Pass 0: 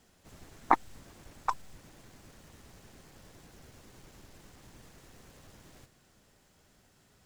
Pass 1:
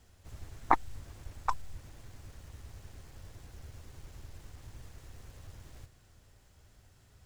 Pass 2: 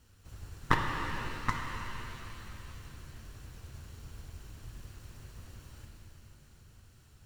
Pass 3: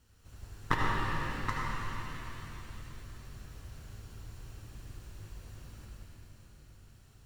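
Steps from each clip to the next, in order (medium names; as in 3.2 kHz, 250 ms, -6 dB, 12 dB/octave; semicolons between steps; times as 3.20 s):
resonant low shelf 130 Hz +10 dB, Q 1.5; trim -1 dB
comb filter that takes the minimum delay 0.71 ms; pitch-shifted reverb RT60 3.3 s, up +7 st, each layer -8 dB, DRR 1 dB
reverberation RT60 1.9 s, pre-delay 70 ms, DRR -0.5 dB; trim -3.5 dB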